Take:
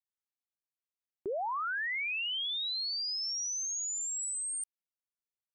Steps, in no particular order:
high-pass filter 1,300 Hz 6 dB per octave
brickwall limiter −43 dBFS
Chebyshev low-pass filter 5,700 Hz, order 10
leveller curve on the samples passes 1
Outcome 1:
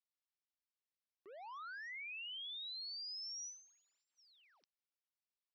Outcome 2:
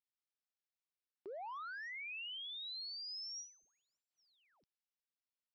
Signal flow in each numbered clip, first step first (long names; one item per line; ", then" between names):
leveller curve on the samples, then Chebyshev low-pass filter, then brickwall limiter, then high-pass filter
high-pass filter, then leveller curve on the samples, then brickwall limiter, then Chebyshev low-pass filter